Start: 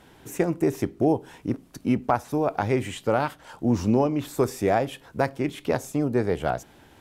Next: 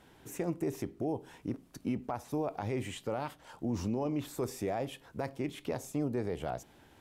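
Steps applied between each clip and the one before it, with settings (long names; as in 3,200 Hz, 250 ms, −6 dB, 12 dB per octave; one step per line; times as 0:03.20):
dynamic equaliser 1,500 Hz, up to −5 dB, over −46 dBFS, Q 3.1
brickwall limiter −17 dBFS, peak gain reduction 8 dB
level −7 dB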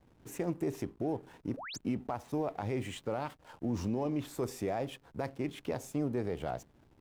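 slack as between gear wheels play −50.5 dBFS
sound drawn into the spectrogram rise, 0:01.57–0:01.78, 450–7,900 Hz −43 dBFS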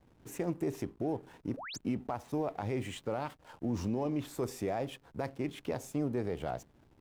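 no processing that can be heard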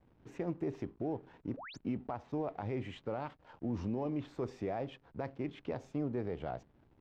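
high-frequency loss of the air 200 metres
level −2.5 dB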